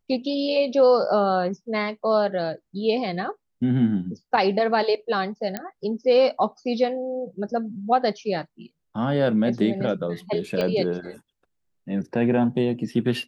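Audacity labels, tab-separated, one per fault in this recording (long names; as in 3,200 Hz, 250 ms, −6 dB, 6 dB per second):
5.570000	5.570000	click −12 dBFS
10.610000	10.610000	click −13 dBFS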